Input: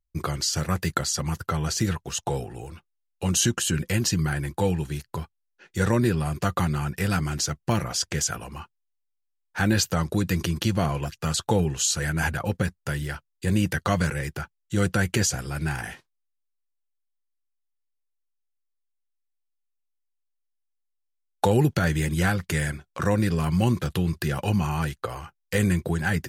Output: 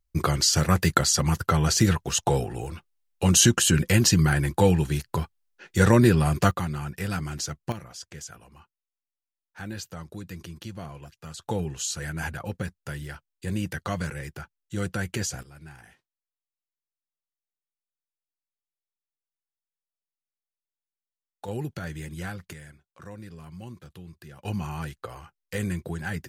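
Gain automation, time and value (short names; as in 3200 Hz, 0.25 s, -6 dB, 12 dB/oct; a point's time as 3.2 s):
+4.5 dB
from 6.51 s -5 dB
from 7.72 s -14.5 dB
from 11.42 s -6.5 dB
from 15.43 s -18 dB
from 21.48 s -12 dB
from 22.53 s -19.5 dB
from 24.45 s -7 dB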